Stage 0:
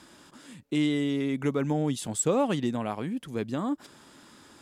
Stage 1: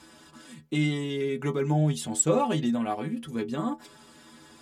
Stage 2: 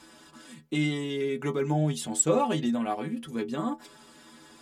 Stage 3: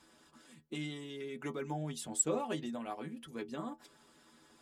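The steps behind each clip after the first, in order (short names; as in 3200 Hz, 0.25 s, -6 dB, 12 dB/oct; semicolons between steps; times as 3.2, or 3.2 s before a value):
metallic resonator 75 Hz, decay 0.26 s, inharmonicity 0.008; gain +8.5 dB
bell 100 Hz -7.5 dB 1 oct
harmonic-percussive split harmonic -8 dB; gain -6 dB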